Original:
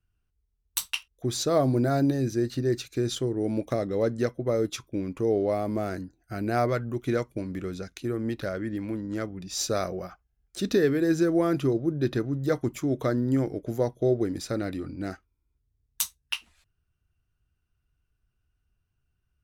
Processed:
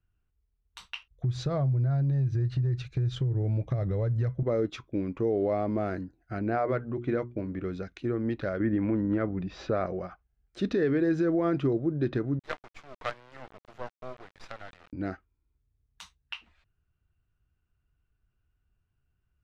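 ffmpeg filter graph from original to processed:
-filter_complex "[0:a]asettb=1/sr,asplit=3[a][b][c];[a]atrim=end=1.104[d];[b]atrim=start=1.1:end=4.43,asetpts=PTS-STARTPTS,afade=t=in:d=0.004:c=qsin,afade=t=out:st=3.326:d=0.004:c=qsin,lowshelf=f=180:t=q:w=3:g=10.5,acompressor=threshold=-24dB:ratio=8:attack=3.2:release=140:knee=1:detection=peak[e];[c]atrim=start=4.426[f];[d][e]acrossfade=d=0.004:c1=hsin:c2=qsin[g];[g][f]acrossfade=d=0.004:c1=qsin:c2=hsin,asettb=1/sr,asplit=3[h][i][j];[h]atrim=end=6.394[k];[i]atrim=start=6.39:end=7.63,asetpts=PTS-STARTPTS,afade=t=in:d=0.004:c=qsin,afade=t=out:st=1.236:d=0.004:c=qsin,lowpass=f=2.4k:p=1,bandreject=f=60:t=h:w=6,bandreject=f=120:t=h:w=6,bandreject=f=180:t=h:w=6,bandreject=f=240:t=h:w=6,bandreject=f=300:t=h:w=6,bandreject=f=360:t=h:w=6,bandreject=f=420:t=h:w=6[l];[j]atrim=start=7.626[m];[k][l]acrossfade=d=0.004:c1=hsin:c2=qsin[n];[n][m]acrossfade=d=0.004:c1=qsin:c2=hsin,asettb=1/sr,asplit=3[o][p][q];[o]atrim=end=8.604[r];[p]atrim=start=8.6:end=9.86,asetpts=PTS-STARTPTS,afade=t=in:d=0.004:c=qsin,afade=t=out:st=1.256:d=0.004:c=qsin,lowpass=2.3k,acontrast=58[s];[q]atrim=start=9.856[t];[r][s]acrossfade=d=0.004:c1=hsin:c2=qsin[u];[u][t]acrossfade=d=0.004:c1=qsin:c2=hsin,asettb=1/sr,asplit=3[v][w][x];[v]atrim=end=12.394[y];[w]atrim=start=12.39:end=14.93,asetpts=PTS-STARTPTS,afade=t=in:d=0.004:c=qsin,afade=t=out:st=2.536:d=0.004:c=qsin,highpass=f=690:w=0.5412,highpass=f=690:w=1.3066,acrusher=bits=5:dc=4:mix=0:aa=0.000001[z];[x]atrim=start=14.926[aa];[y][z]acrossfade=d=0.004:c1=hsin:c2=qsin[ab];[ab][aa]acrossfade=d=0.004:c1=qsin:c2=hsin,alimiter=limit=-18dB:level=0:latency=1:release=71,lowpass=2.7k"

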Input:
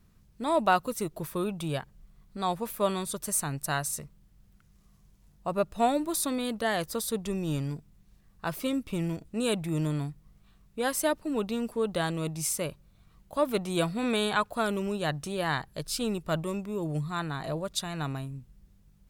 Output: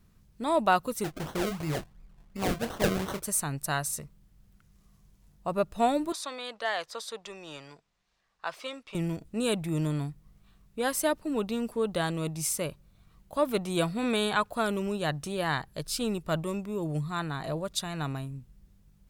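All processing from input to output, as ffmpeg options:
-filter_complex "[0:a]asettb=1/sr,asplit=3[a][b][c];[a]atrim=end=1.044[d];[b]atrim=start=1.04:end=3.23,asetpts=PTS-STARTPTS,afade=t=in:d=0.004:c=qsin,afade=t=out:st=2.186:d=0.004:c=qsin,acrusher=samples=35:mix=1:aa=0.000001:lfo=1:lforange=35:lforate=2.8,asplit=2[e][f];[f]adelay=26,volume=-8.5dB[g];[e][g]amix=inputs=2:normalize=0,atrim=end_sample=96579[h];[c]atrim=start=3.226[i];[d][h]acrossfade=d=0.004:c1=hsin:c2=qsin[j];[j][i]acrossfade=d=0.004:c1=qsin:c2=hsin,asettb=1/sr,asplit=3[k][l][m];[k]atrim=end=6.124[n];[l]atrim=start=6.12:end=8.95,asetpts=PTS-STARTPTS,afade=t=in:d=0.004:c=qsin,afade=t=out:st=2.826:d=0.004:c=qsin,acrossover=split=520 6900:gain=0.0708 1 0.0631[o][p][q];[o][p][q]amix=inputs=3:normalize=0,asoftclip=type=hard:threshold=-19dB[r];[m]atrim=start=8.946[s];[n][r]acrossfade=d=0.004:c1=hsin:c2=qsin[t];[t][s]acrossfade=d=0.004:c1=qsin:c2=hsin"

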